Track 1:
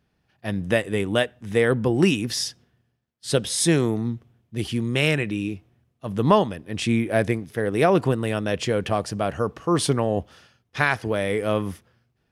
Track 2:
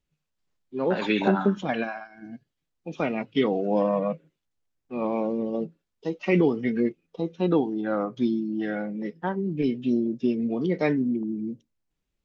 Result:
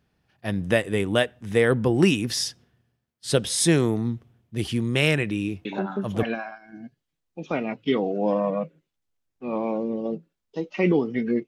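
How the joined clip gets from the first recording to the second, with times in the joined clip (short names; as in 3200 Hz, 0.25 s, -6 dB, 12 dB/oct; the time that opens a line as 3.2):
track 1
5.65 add track 2 from 1.14 s 0.58 s -6.5 dB
6.23 switch to track 2 from 1.72 s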